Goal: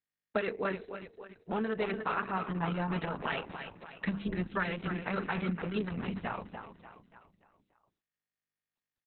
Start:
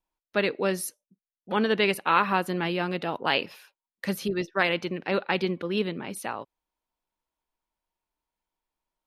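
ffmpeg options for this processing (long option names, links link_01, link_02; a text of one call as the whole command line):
ffmpeg -i in.wav -af "agate=range=-38dB:threshold=-50dB:ratio=16:detection=peak,asetnsamples=nb_out_samples=441:pad=0,asendcmd='0.72 lowpass f 1000;2.93 lowpass f 1800',lowpass=frequency=2500:poles=1,bandreject=frequency=50:width_type=h:width=6,bandreject=frequency=100:width_type=h:width=6,bandreject=frequency=150:width_type=h:width=6,bandreject=frequency=200:width_type=h:width=6,bandreject=frequency=250:width_type=h:width=6,bandreject=frequency=300:width_type=h:width=6,bandreject=frequency=350:width_type=h:width=6,bandreject=frequency=400:width_type=h:width=6,bandreject=frequency=450:width_type=h:width=6,adynamicequalizer=threshold=0.00794:dfrequency=1400:dqfactor=1.9:tfrequency=1400:tqfactor=1.9:attack=5:release=100:ratio=0.375:range=3:mode=boostabove:tftype=bell,aecho=1:1:4.5:0.47,asubboost=boost=10:cutoff=99,acompressor=threshold=-35dB:ratio=4,aecho=1:1:291|582|873|1164|1455:0.355|0.17|0.0817|0.0392|0.0188,volume=4dB" -ar 48000 -c:a libopus -b:a 6k out.opus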